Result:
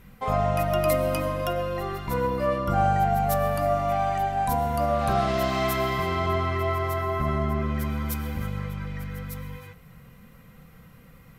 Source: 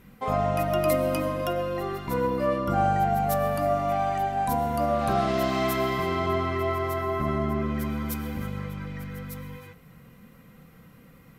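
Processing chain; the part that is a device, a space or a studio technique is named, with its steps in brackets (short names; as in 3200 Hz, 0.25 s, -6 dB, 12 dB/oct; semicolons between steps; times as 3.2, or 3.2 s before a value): low shelf boost with a cut just above (low shelf 80 Hz +7 dB; bell 290 Hz -6 dB 1.1 oct); gain +1.5 dB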